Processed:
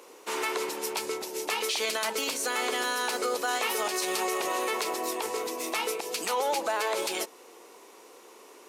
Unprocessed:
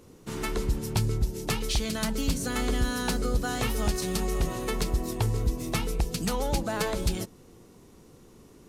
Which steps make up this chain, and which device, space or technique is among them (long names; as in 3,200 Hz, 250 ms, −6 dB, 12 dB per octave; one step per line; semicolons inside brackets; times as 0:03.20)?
laptop speaker (high-pass filter 410 Hz 24 dB per octave; parametric band 970 Hz +5 dB 0.54 octaves; parametric band 2,400 Hz +5 dB 0.58 octaves; brickwall limiter −26 dBFS, peak gain reduction 12 dB)
level +6.5 dB